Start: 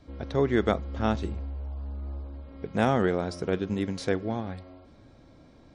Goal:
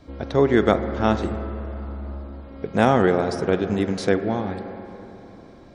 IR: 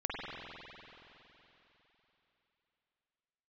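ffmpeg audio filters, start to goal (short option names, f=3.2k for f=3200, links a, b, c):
-filter_complex "[0:a]lowshelf=f=180:g=-4.5,asplit=2[a][b];[1:a]atrim=start_sample=2205,lowpass=2.1k[c];[b][c]afir=irnorm=-1:irlink=0,volume=-12dB[d];[a][d]amix=inputs=2:normalize=0,volume=6dB"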